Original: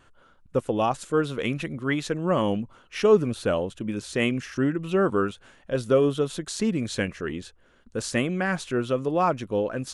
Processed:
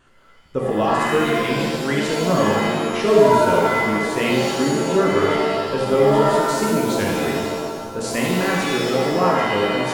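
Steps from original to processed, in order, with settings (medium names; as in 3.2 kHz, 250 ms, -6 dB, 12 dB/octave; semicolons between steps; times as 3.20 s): two-band feedback delay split 490 Hz, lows 413 ms, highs 85 ms, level -10.5 dB; pitch-shifted reverb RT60 1.2 s, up +7 st, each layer -2 dB, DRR -1.5 dB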